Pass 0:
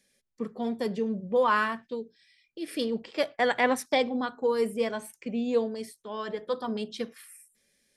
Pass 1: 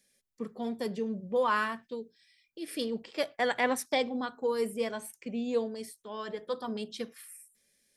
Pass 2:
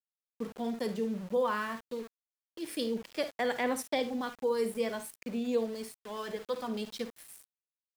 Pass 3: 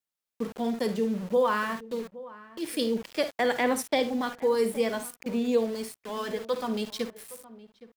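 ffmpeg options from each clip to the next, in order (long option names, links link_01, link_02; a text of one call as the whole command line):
ffmpeg -i in.wav -af "highshelf=frequency=6200:gain=7,volume=-4dB" out.wav
ffmpeg -i in.wav -filter_complex "[0:a]acrossover=split=490[link_01][link_02];[link_02]acompressor=threshold=-33dB:ratio=2.5[link_03];[link_01][link_03]amix=inputs=2:normalize=0,aecho=1:1:53|73:0.251|0.141,aeval=exprs='val(0)*gte(abs(val(0)),0.00531)':channel_layout=same" out.wav
ffmpeg -i in.wav -filter_complex "[0:a]asplit=2[link_01][link_02];[link_02]adelay=816.3,volume=-18dB,highshelf=frequency=4000:gain=-18.4[link_03];[link_01][link_03]amix=inputs=2:normalize=0,volume=5.5dB" out.wav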